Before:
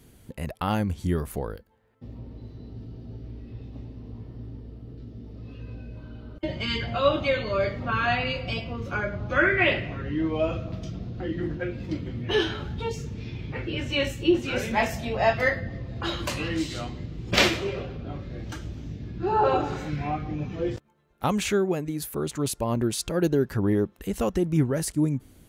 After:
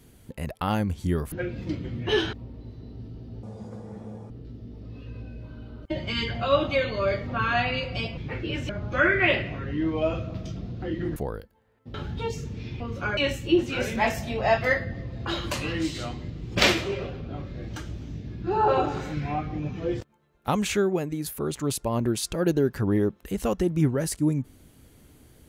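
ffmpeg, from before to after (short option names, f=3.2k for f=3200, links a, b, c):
-filter_complex "[0:a]asplit=11[a][b][c][d][e][f][g][h][i][j][k];[a]atrim=end=1.322[l];[b]atrim=start=11.538:end=12.552[m];[c]atrim=start=2.098:end=3.204[n];[d]atrim=start=3.2:end=4.83,asetpts=PTS-STARTPTS,asetrate=82467,aresample=44100,atrim=end_sample=38440,asetpts=PTS-STARTPTS[o];[e]atrim=start=4.826:end=8.702[p];[f]atrim=start=13.408:end=13.932[q];[g]atrim=start=9.068:end=11.542[r];[h]atrim=start=1.318:end=2.102[s];[i]atrim=start=12.548:end=13.412[t];[j]atrim=start=8.698:end=9.072[u];[k]atrim=start=13.928[v];[l][m]acrossfade=d=0.004:c1=hsin:c2=hsin[w];[w][n]acrossfade=d=0.004:c1=hsin:c2=hsin[x];[x][o]acrossfade=d=0.004:c1=hsin:c2=hsin[y];[y][p]acrossfade=d=0.004:c1=hsin:c2=hsin[z];[z][q]acrossfade=d=0.004:c1=hsin:c2=hsin[aa];[aa][r]acrossfade=d=0.004:c1=hsin:c2=hsin[ab];[ab][s]acrossfade=d=0.004:c1=hsin:c2=hsin[ac];[ac][t]acrossfade=d=0.004:c1=hsin:c2=hsin[ad];[ad][u]acrossfade=d=0.004:c1=hsin:c2=hsin[ae];[ae][v]acrossfade=d=0.004:c1=hsin:c2=hsin"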